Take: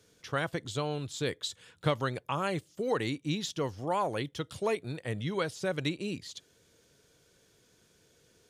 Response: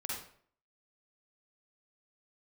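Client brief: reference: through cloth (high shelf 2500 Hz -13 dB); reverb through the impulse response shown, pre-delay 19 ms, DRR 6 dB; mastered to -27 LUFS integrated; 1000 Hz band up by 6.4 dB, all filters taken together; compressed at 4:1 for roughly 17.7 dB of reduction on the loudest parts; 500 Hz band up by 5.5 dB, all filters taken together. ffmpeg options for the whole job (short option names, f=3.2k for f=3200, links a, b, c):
-filter_complex "[0:a]equalizer=f=500:t=o:g=5,equalizer=f=1k:t=o:g=8.5,acompressor=threshold=-40dB:ratio=4,asplit=2[a][b];[1:a]atrim=start_sample=2205,adelay=19[c];[b][c]afir=irnorm=-1:irlink=0,volume=-7.5dB[d];[a][d]amix=inputs=2:normalize=0,highshelf=f=2.5k:g=-13,volume=16dB"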